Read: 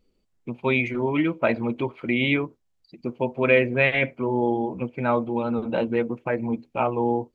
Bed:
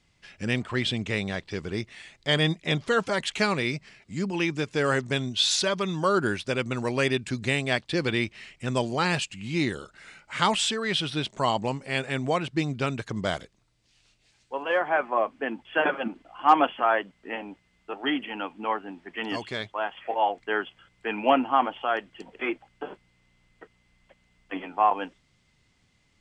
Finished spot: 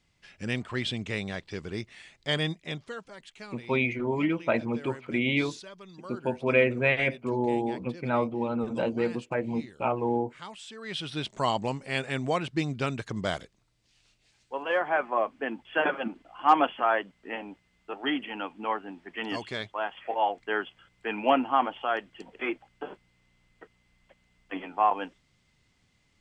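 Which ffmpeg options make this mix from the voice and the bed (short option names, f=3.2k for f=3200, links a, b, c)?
-filter_complex "[0:a]adelay=3050,volume=-4dB[a];[1:a]volume=14dB,afade=t=out:st=2.29:d=0.75:silence=0.158489,afade=t=in:st=10.67:d=0.69:silence=0.125893[b];[a][b]amix=inputs=2:normalize=0"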